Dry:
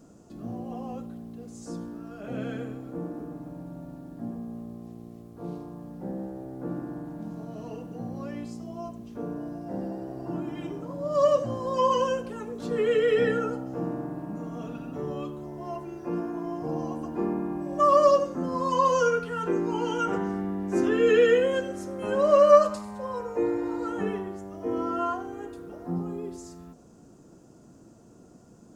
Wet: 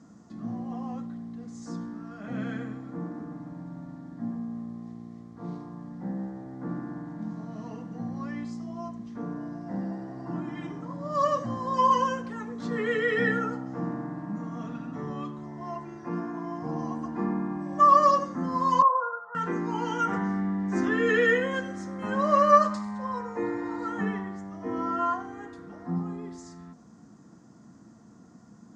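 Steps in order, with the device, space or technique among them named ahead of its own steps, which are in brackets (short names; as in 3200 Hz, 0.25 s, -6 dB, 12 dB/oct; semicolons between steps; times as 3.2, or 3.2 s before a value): 18.82–19.35 elliptic band-pass 540–1300 Hz, stop band 40 dB; car door speaker (speaker cabinet 90–7000 Hz, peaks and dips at 210 Hz +6 dB, 390 Hz -9 dB, 560 Hz -8 dB, 1100 Hz +5 dB, 1900 Hz +9 dB, 2700 Hz -7 dB)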